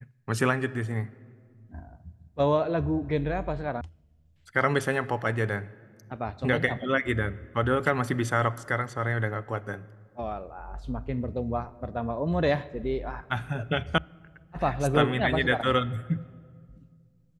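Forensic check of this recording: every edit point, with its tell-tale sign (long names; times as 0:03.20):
0:03.81: cut off before it has died away
0:13.98: cut off before it has died away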